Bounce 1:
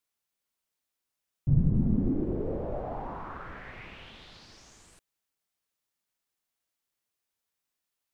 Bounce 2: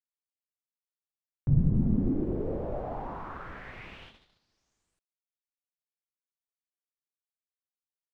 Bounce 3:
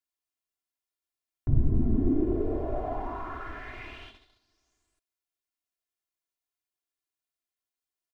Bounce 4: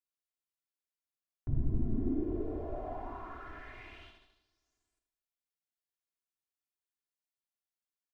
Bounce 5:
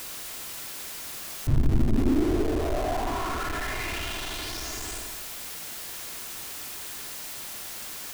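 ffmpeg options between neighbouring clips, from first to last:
ffmpeg -i in.wav -af "agate=range=-24dB:threshold=-47dB:ratio=16:detection=peak" out.wav
ffmpeg -i in.wav -af "aecho=1:1:2.9:0.96" out.wav
ffmpeg -i in.wav -af "aecho=1:1:78|156|234|312|390|468:0.355|0.181|0.0923|0.0471|0.024|0.0122,volume=-8.5dB" out.wav
ffmpeg -i in.wav -af "aeval=exprs='val(0)+0.5*0.0168*sgn(val(0))':channel_layout=same,volume=8dB" out.wav

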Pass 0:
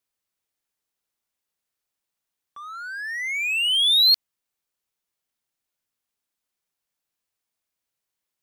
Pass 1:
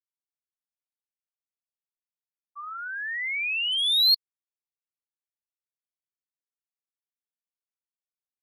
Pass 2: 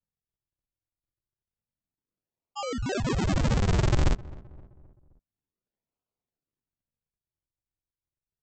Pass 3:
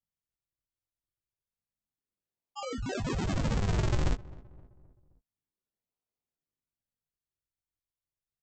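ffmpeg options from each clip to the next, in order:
ffmpeg -i in.wav -af "equalizer=frequency=3200:width_type=o:width=0.87:gain=-5.5,afftfilt=real='re*gte(hypot(re,im),0.1)':imag='im*gte(hypot(re,im),0.1)':win_size=1024:overlap=0.75,equalizer=frequency=960:width_type=o:width=0.39:gain=6" out.wav
ffmpeg -i in.wav -filter_complex "[0:a]acompressor=threshold=-25dB:ratio=4,aresample=16000,acrusher=samples=42:mix=1:aa=0.000001:lfo=1:lforange=67.2:lforate=0.29,aresample=44100,asplit=2[link_01][link_02];[link_02]adelay=261,lowpass=frequency=1300:poles=1,volume=-20dB,asplit=2[link_03][link_04];[link_04]adelay=261,lowpass=frequency=1300:poles=1,volume=0.5,asplit=2[link_05][link_06];[link_06]adelay=261,lowpass=frequency=1300:poles=1,volume=0.5,asplit=2[link_07][link_08];[link_08]adelay=261,lowpass=frequency=1300:poles=1,volume=0.5[link_09];[link_01][link_03][link_05][link_07][link_09]amix=inputs=5:normalize=0,volume=5dB" out.wav
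ffmpeg -i in.wav -filter_complex "[0:a]asplit=2[link_01][link_02];[link_02]adelay=19,volume=-8dB[link_03];[link_01][link_03]amix=inputs=2:normalize=0,volume=-5.5dB" out.wav

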